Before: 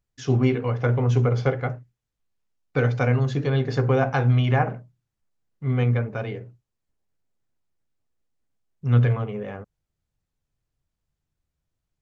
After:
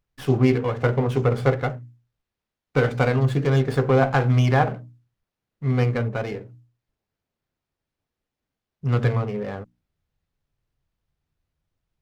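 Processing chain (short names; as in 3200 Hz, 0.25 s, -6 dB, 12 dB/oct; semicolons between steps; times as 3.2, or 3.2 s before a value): notches 60/120/180/240/300 Hz; running maximum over 5 samples; gain +3 dB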